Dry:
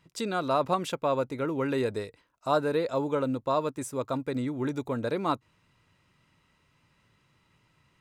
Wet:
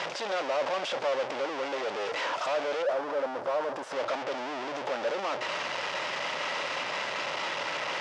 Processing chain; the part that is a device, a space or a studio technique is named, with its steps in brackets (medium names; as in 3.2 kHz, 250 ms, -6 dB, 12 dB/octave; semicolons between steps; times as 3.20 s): home computer beeper (one-bit comparator; cabinet simulation 540–5100 Hz, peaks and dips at 570 Hz +10 dB, 830 Hz +3 dB, 4.1 kHz -5 dB); 2.82–3.92 s: high-order bell 4 kHz -8 dB 2.3 oct; trim +1 dB